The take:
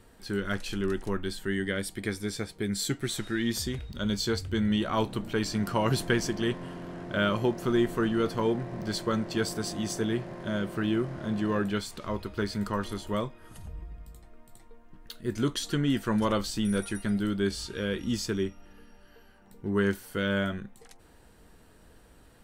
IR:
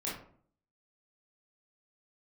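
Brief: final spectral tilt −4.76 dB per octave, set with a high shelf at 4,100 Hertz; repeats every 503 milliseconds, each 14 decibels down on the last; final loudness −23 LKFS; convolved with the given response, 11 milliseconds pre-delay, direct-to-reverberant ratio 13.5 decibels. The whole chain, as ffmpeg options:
-filter_complex "[0:a]highshelf=frequency=4100:gain=3.5,aecho=1:1:503|1006:0.2|0.0399,asplit=2[link_01][link_02];[1:a]atrim=start_sample=2205,adelay=11[link_03];[link_02][link_03]afir=irnorm=-1:irlink=0,volume=-17dB[link_04];[link_01][link_04]amix=inputs=2:normalize=0,volume=6.5dB"

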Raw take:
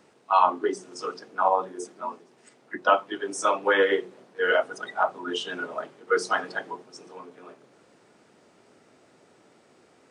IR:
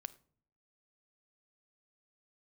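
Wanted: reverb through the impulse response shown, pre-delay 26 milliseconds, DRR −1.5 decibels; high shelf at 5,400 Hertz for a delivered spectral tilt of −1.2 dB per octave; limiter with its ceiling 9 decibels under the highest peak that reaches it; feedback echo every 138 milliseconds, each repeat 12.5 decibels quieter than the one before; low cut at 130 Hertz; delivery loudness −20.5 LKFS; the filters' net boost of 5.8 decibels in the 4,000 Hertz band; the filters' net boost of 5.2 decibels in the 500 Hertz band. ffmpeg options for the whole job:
-filter_complex "[0:a]highpass=130,equalizer=frequency=500:width_type=o:gain=6,equalizer=frequency=4000:width_type=o:gain=5.5,highshelf=frequency=5400:gain=7.5,alimiter=limit=-12dB:level=0:latency=1,aecho=1:1:138|276|414:0.237|0.0569|0.0137,asplit=2[link_01][link_02];[1:a]atrim=start_sample=2205,adelay=26[link_03];[link_02][link_03]afir=irnorm=-1:irlink=0,volume=5.5dB[link_04];[link_01][link_04]amix=inputs=2:normalize=0,volume=2dB"

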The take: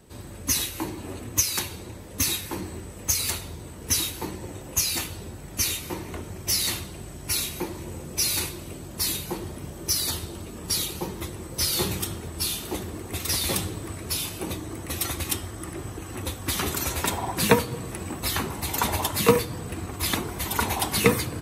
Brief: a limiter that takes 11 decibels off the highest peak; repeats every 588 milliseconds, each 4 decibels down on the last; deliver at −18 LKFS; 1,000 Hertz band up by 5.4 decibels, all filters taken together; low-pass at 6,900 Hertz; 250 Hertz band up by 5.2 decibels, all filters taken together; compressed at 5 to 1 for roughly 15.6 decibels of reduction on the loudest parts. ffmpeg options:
ffmpeg -i in.wav -af "lowpass=6900,equalizer=frequency=250:width_type=o:gain=6.5,equalizer=frequency=1000:width_type=o:gain=6,acompressor=threshold=-26dB:ratio=5,alimiter=limit=-22dB:level=0:latency=1,aecho=1:1:588|1176|1764|2352|2940|3528|4116|4704|5292:0.631|0.398|0.25|0.158|0.0994|0.0626|0.0394|0.0249|0.0157,volume=12.5dB" out.wav

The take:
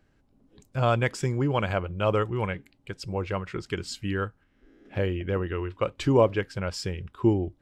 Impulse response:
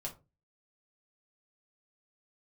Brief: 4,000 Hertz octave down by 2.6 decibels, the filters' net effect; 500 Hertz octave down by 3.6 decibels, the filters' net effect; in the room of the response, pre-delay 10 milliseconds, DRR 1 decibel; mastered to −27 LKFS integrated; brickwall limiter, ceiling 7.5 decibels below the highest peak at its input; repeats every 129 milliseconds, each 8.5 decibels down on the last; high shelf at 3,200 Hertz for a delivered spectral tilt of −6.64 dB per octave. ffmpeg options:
-filter_complex "[0:a]equalizer=frequency=500:width_type=o:gain=-4.5,highshelf=frequency=3200:gain=5.5,equalizer=frequency=4000:width_type=o:gain=-8.5,alimiter=limit=-17.5dB:level=0:latency=1,aecho=1:1:129|258|387|516:0.376|0.143|0.0543|0.0206,asplit=2[link_01][link_02];[1:a]atrim=start_sample=2205,adelay=10[link_03];[link_02][link_03]afir=irnorm=-1:irlink=0,volume=0dB[link_04];[link_01][link_04]amix=inputs=2:normalize=0"

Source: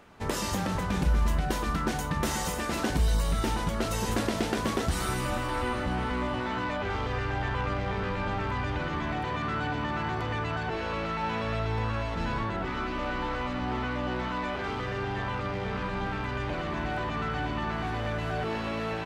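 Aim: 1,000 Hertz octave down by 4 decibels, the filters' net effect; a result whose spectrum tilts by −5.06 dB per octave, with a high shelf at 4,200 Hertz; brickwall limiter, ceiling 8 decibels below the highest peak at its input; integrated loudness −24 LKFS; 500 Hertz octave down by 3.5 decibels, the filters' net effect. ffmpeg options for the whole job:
ffmpeg -i in.wav -af "equalizer=frequency=500:width_type=o:gain=-3.5,equalizer=frequency=1000:width_type=o:gain=-3.5,highshelf=frequency=4200:gain=-7.5,volume=10.5dB,alimiter=limit=-14dB:level=0:latency=1" out.wav

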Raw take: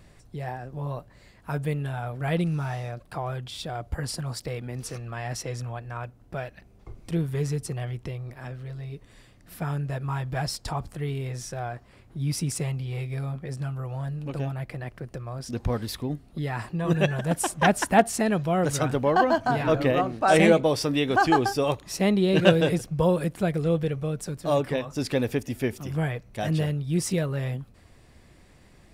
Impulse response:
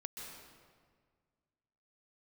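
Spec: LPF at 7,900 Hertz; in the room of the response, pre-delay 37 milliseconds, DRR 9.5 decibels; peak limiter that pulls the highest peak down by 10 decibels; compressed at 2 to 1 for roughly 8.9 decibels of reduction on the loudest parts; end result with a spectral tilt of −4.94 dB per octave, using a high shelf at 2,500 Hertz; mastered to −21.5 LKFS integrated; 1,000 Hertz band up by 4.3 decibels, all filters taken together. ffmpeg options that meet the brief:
-filter_complex "[0:a]lowpass=7900,equalizer=frequency=1000:width_type=o:gain=5,highshelf=frequency=2500:gain=7.5,acompressor=threshold=-26dB:ratio=2,alimiter=limit=-19.5dB:level=0:latency=1,asplit=2[link_01][link_02];[1:a]atrim=start_sample=2205,adelay=37[link_03];[link_02][link_03]afir=irnorm=-1:irlink=0,volume=-7.5dB[link_04];[link_01][link_04]amix=inputs=2:normalize=0,volume=9dB"

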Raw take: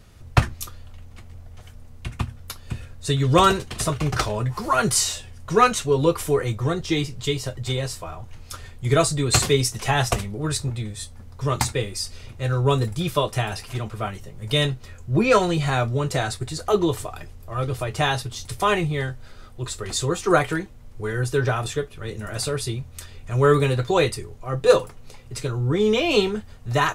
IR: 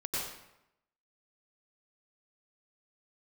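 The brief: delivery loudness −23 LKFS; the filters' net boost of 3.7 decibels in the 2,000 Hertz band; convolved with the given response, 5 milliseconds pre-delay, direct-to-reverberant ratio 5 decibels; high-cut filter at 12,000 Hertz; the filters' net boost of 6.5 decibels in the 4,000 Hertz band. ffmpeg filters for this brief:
-filter_complex "[0:a]lowpass=12000,equalizer=frequency=2000:width_type=o:gain=3,equalizer=frequency=4000:width_type=o:gain=7,asplit=2[link_01][link_02];[1:a]atrim=start_sample=2205,adelay=5[link_03];[link_02][link_03]afir=irnorm=-1:irlink=0,volume=-9.5dB[link_04];[link_01][link_04]amix=inputs=2:normalize=0,volume=-3dB"

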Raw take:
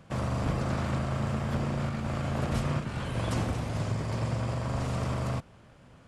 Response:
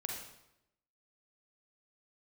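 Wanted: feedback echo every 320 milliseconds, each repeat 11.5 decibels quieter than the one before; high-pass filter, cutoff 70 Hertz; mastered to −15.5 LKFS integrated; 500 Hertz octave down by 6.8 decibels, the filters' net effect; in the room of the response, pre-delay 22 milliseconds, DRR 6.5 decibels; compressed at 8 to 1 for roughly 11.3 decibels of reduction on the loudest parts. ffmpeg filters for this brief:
-filter_complex "[0:a]highpass=70,equalizer=frequency=500:width_type=o:gain=-9,acompressor=threshold=-39dB:ratio=8,aecho=1:1:320|640|960:0.266|0.0718|0.0194,asplit=2[link_01][link_02];[1:a]atrim=start_sample=2205,adelay=22[link_03];[link_02][link_03]afir=irnorm=-1:irlink=0,volume=-7dB[link_04];[link_01][link_04]amix=inputs=2:normalize=0,volume=26dB"

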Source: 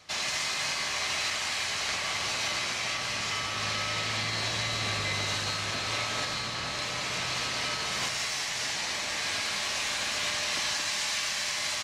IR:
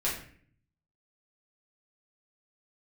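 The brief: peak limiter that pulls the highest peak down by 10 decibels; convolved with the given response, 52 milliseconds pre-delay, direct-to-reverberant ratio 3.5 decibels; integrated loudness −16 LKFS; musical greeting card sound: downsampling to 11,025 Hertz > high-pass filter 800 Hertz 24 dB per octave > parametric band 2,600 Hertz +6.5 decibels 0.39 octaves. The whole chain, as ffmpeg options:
-filter_complex "[0:a]alimiter=level_in=4dB:limit=-24dB:level=0:latency=1,volume=-4dB,asplit=2[link_01][link_02];[1:a]atrim=start_sample=2205,adelay=52[link_03];[link_02][link_03]afir=irnorm=-1:irlink=0,volume=-11dB[link_04];[link_01][link_04]amix=inputs=2:normalize=0,aresample=11025,aresample=44100,highpass=frequency=800:width=0.5412,highpass=frequency=800:width=1.3066,equalizer=frequency=2600:width_type=o:width=0.39:gain=6.5,volume=16.5dB"

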